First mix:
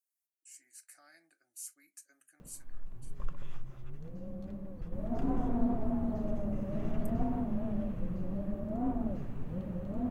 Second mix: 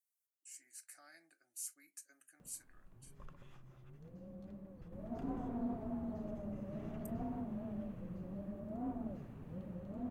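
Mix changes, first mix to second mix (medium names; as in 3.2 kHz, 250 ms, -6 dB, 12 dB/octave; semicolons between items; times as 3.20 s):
background -7.5 dB; master: add high-pass 74 Hz 6 dB/octave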